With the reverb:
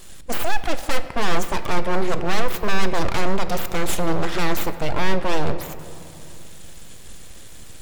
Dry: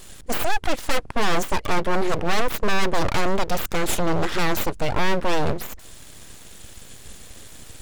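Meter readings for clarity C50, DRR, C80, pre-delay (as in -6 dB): 11.5 dB, 10.0 dB, 12.5 dB, 6 ms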